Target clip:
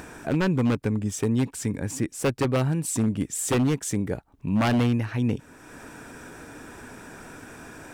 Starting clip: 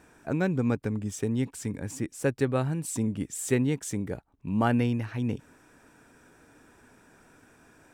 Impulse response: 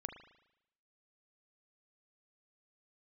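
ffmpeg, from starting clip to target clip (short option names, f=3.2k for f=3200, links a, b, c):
-filter_complex "[0:a]asplit=2[a][b];[b]acompressor=mode=upward:threshold=-28dB:ratio=2.5,volume=-2.5dB[c];[a][c]amix=inputs=2:normalize=0,aeval=exprs='0.158*(abs(mod(val(0)/0.158+3,4)-2)-1)':c=same"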